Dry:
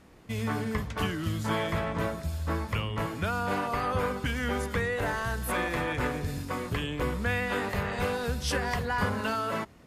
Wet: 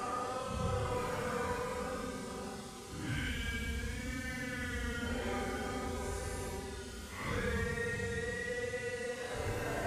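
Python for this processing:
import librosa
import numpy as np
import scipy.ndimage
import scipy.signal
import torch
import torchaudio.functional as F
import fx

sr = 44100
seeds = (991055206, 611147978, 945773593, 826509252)

y = fx.dmg_noise_band(x, sr, seeds[0], low_hz=1900.0, high_hz=9600.0, level_db=-46.0)
y = fx.paulstretch(y, sr, seeds[1], factor=8.4, window_s=0.05, from_s=3.88)
y = F.gain(torch.from_numpy(y), -8.5).numpy()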